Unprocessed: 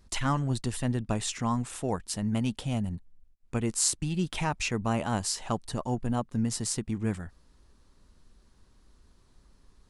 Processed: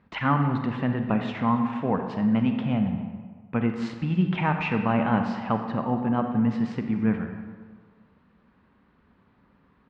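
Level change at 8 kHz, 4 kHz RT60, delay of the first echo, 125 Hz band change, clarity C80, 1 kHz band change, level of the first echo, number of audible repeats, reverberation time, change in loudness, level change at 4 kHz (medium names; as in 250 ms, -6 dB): under -30 dB, 1.0 s, 283 ms, +3.5 dB, 7.0 dB, +6.5 dB, -20.5 dB, 1, 1.6 s, +4.5 dB, -6.0 dB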